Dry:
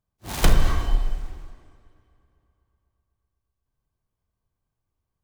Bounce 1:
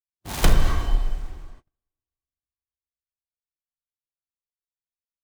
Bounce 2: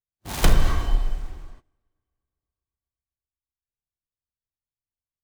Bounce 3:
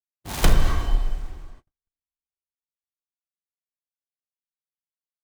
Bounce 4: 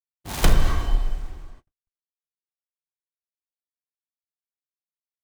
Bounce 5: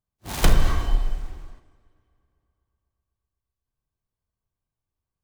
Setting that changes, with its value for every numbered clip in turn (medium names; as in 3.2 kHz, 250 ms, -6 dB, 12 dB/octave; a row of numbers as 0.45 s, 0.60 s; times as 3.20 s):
gate, range: -34 dB, -21 dB, -47 dB, -60 dB, -6 dB